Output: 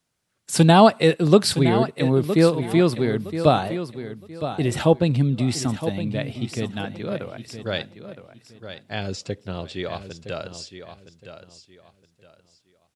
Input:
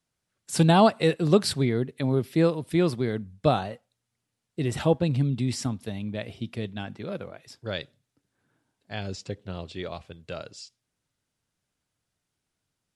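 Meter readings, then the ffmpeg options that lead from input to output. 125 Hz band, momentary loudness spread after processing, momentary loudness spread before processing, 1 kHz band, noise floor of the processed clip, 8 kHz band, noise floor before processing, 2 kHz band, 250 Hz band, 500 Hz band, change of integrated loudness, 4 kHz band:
+4.5 dB, 18 LU, 18 LU, +6.0 dB, −67 dBFS, +6.0 dB, −83 dBFS, +6.0 dB, +5.0 dB, +5.5 dB, +5.0 dB, +6.0 dB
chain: -filter_complex "[0:a]lowshelf=frequency=75:gain=-6,asplit=2[link_01][link_02];[link_02]aecho=0:1:965|1930|2895:0.282|0.0733|0.0191[link_03];[link_01][link_03]amix=inputs=2:normalize=0,volume=5.5dB"

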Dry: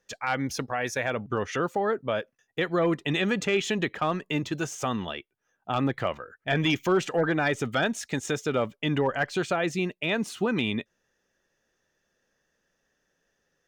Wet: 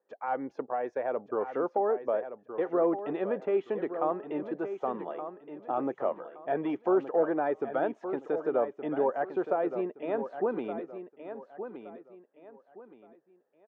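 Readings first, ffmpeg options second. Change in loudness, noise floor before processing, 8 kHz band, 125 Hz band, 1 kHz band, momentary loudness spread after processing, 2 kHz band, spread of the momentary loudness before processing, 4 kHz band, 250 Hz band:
−3.5 dB, −77 dBFS, below −35 dB, −18.0 dB, −2.0 dB, 14 LU, −14.5 dB, 7 LU, below −25 dB, −5.0 dB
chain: -filter_complex "[0:a]asuperpass=centerf=570:order=4:qfactor=0.87,asplit=2[link_01][link_02];[link_02]aecho=0:1:1170|2340|3510:0.316|0.0949|0.0285[link_03];[link_01][link_03]amix=inputs=2:normalize=0"

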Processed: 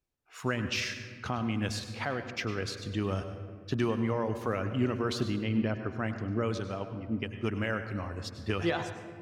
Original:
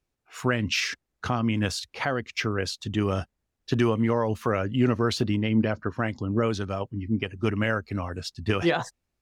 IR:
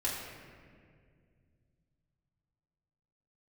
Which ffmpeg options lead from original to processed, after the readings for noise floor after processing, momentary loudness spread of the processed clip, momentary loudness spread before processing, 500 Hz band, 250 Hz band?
−48 dBFS, 7 LU, 8 LU, −6.0 dB, −6.0 dB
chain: -filter_complex "[0:a]asplit=2[link_01][link_02];[1:a]atrim=start_sample=2205,asetrate=42777,aresample=44100,adelay=99[link_03];[link_02][link_03]afir=irnorm=-1:irlink=0,volume=-14dB[link_04];[link_01][link_04]amix=inputs=2:normalize=0,volume=-6.5dB"

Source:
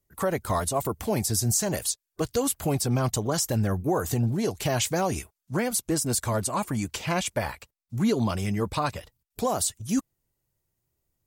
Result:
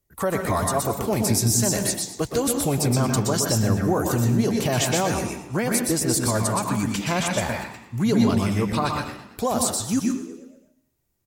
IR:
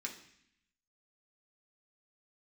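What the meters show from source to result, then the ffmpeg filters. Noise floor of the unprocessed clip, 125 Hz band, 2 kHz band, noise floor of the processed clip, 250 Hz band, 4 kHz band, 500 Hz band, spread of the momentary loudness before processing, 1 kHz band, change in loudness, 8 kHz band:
−84 dBFS, +4.5 dB, +5.0 dB, −69 dBFS, +5.5 dB, +4.5 dB, +3.5 dB, 6 LU, +3.5 dB, +4.5 dB, +4.0 dB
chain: -filter_complex "[0:a]asplit=6[link_01][link_02][link_03][link_04][link_05][link_06];[link_02]adelay=112,afreqshift=71,volume=-15dB[link_07];[link_03]adelay=224,afreqshift=142,volume=-21.2dB[link_08];[link_04]adelay=336,afreqshift=213,volume=-27.4dB[link_09];[link_05]adelay=448,afreqshift=284,volume=-33.6dB[link_10];[link_06]adelay=560,afreqshift=355,volume=-39.8dB[link_11];[link_01][link_07][link_08][link_09][link_10][link_11]amix=inputs=6:normalize=0,asplit=2[link_12][link_13];[1:a]atrim=start_sample=2205,adelay=122[link_14];[link_13][link_14]afir=irnorm=-1:irlink=0,volume=-0.5dB[link_15];[link_12][link_15]amix=inputs=2:normalize=0,volume=2dB"

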